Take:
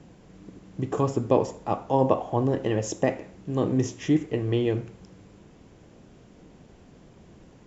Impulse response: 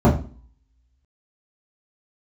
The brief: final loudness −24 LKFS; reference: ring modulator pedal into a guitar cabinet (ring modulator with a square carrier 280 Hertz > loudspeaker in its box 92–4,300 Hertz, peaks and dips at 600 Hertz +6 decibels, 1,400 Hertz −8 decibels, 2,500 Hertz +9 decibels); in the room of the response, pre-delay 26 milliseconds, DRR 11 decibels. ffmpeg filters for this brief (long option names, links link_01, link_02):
-filter_complex "[0:a]asplit=2[link_01][link_02];[1:a]atrim=start_sample=2205,adelay=26[link_03];[link_02][link_03]afir=irnorm=-1:irlink=0,volume=-33dB[link_04];[link_01][link_04]amix=inputs=2:normalize=0,aeval=exprs='val(0)*sgn(sin(2*PI*280*n/s))':channel_layout=same,highpass=92,equalizer=frequency=600:width_type=q:width=4:gain=6,equalizer=frequency=1400:width_type=q:width=4:gain=-8,equalizer=frequency=2500:width_type=q:width=4:gain=9,lowpass=frequency=4300:width=0.5412,lowpass=frequency=4300:width=1.3066,volume=-2dB"